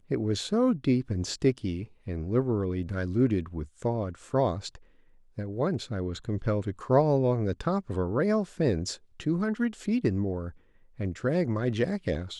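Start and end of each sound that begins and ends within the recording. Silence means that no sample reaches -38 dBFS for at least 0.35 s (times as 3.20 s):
5.38–10.50 s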